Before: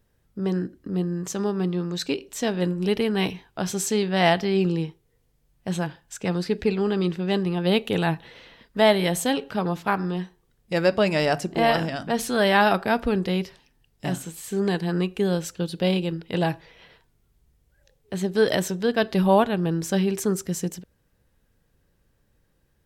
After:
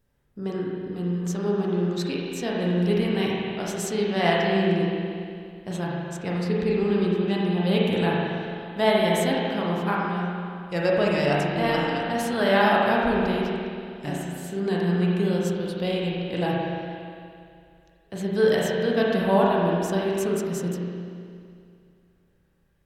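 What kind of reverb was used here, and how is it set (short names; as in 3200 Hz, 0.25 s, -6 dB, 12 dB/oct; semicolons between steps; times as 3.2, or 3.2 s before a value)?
spring tank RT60 2.4 s, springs 34/41 ms, chirp 55 ms, DRR -4 dB; gain -5.5 dB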